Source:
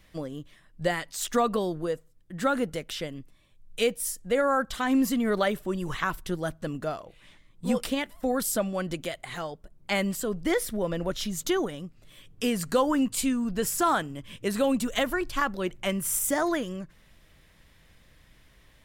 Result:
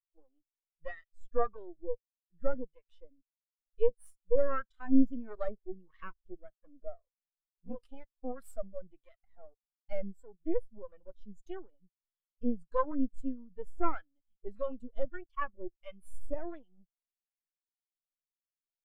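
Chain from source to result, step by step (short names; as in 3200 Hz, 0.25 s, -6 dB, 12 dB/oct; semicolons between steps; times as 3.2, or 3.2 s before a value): low shelf 210 Hz -10 dB; half-wave rectifier; harmonic tremolo 1.6 Hz, depth 50%, crossover 880 Hz; in parallel at -8.5 dB: soft clip -27.5 dBFS, distortion -12 dB; on the sum: spectral expander 2.5:1; gain +4.5 dB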